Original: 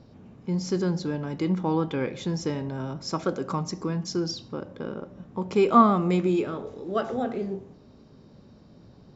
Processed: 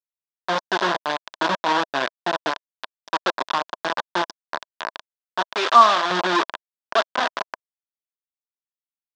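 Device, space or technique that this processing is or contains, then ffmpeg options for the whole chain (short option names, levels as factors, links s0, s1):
hand-held game console: -filter_complex "[0:a]acrusher=bits=3:mix=0:aa=0.000001,highpass=400,equalizer=f=450:t=q:w=4:g=-6,equalizer=f=640:t=q:w=4:g=6,equalizer=f=1000:t=q:w=4:g=9,equalizer=f=1600:t=q:w=4:g=7,equalizer=f=2200:t=q:w=4:g=-4,equalizer=f=3500:t=q:w=4:g=6,lowpass=f=5400:w=0.5412,lowpass=f=5400:w=1.3066,asettb=1/sr,asplit=3[s0][s1][s2];[s0]atrim=end=5.554[s3];[s1]atrim=start=5.55:end=6.11,asetpts=PTS-STARTPTS,afade=t=in:d=0.004:c=qsin,afade=t=out:st=0.556:d=0.004:c=qsin,highpass=f=600:p=1[s4];[s2]atrim=start=6.106[s5];[s3][s4]acrossfade=d=0.004:c1=hsin:c2=qsin[s6];[s6][s5]acrossfade=d=0.004:c1=qsin:c2=hsin,volume=1.41"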